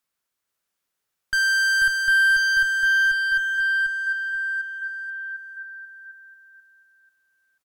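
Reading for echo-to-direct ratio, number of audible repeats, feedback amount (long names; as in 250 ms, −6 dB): −3.5 dB, 4, 35%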